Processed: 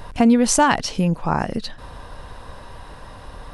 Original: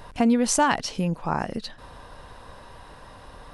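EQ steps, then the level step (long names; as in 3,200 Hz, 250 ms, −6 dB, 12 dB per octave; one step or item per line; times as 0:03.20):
low-shelf EQ 120 Hz +5.5 dB
+4.5 dB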